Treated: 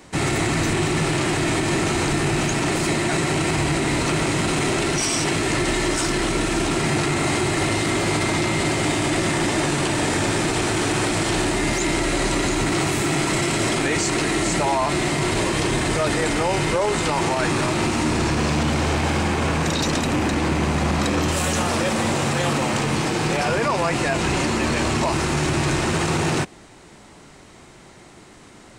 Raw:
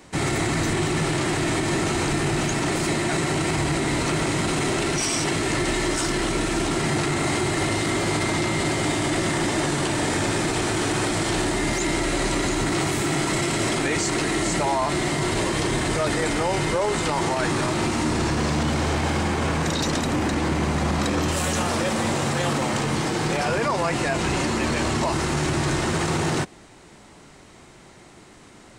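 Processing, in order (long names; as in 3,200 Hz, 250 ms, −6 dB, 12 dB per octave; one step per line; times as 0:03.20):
loose part that buzzes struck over −32 dBFS, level −25 dBFS
level +2 dB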